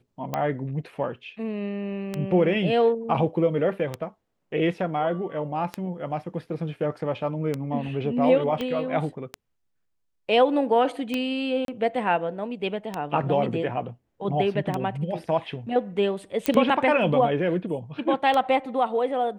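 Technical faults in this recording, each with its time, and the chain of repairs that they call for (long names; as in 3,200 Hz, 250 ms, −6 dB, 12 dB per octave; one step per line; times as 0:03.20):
scratch tick 33 1/3 rpm −13 dBFS
0:08.61: click −16 dBFS
0:11.65–0:11.68: drop-out 32 ms
0:16.46: click −8 dBFS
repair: click removal
repair the gap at 0:11.65, 32 ms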